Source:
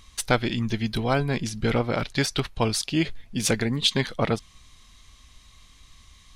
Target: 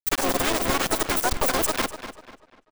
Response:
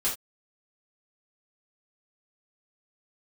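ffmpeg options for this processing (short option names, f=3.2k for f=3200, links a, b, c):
-filter_complex "[0:a]adynamicequalizer=threshold=0.0112:dfrequency=660:dqfactor=4.4:tfrequency=660:tqfactor=4.4:attack=5:release=100:ratio=0.375:range=1.5:mode=cutabove:tftype=bell,acompressor=threshold=-29dB:ratio=12,asplit=4[a][b][c][d];[b]asetrate=33038,aresample=44100,atempo=1.33484,volume=-7dB[e];[c]asetrate=58866,aresample=44100,atempo=0.749154,volume=-2dB[f];[d]asetrate=88200,aresample=44100,atempo=0.5,volume=-2dB[g];[a][e][f][g]amix=inputs=4:normalize=0,acrusher=bits=4:mix=0:aa=0.000001,aeval=exprs='(tanh(11.2*val(0)+0.65)-tanh(0.65))/11.2':c=same,aexciter=amount=13.9:drive=6.5:freq=9.7k,asetrate=103194,aresample=44100,asplit=2[h][i];[i]adelay=246,lowpass=f=4.7k:p=1,volume=-11dB,asplit=2[j][k];[k]adelay=246,lowpass=f=4.7k:p=1,volume=0.37,asplit=2[l][m];[m]adelay=246,lowpass=f=4.7k:p=1,volume=0.37,asplit=2[n][o];[o]adelay=246,lowpass=f=4.7k:p=1,volume=0.37[p];[j][l][n][p]amix=inputs=4:normalize=0[q];[h][q]amix=inputs=2:normalize=0,volume=8dB"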